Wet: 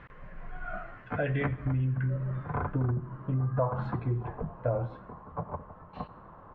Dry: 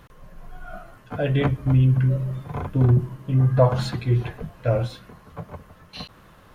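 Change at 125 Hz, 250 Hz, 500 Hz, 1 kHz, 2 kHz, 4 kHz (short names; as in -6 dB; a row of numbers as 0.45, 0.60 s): -10.5 dB, -9.0 dB, -8.5 dB, -4.0 dB, -3.0 dB, under -15 dB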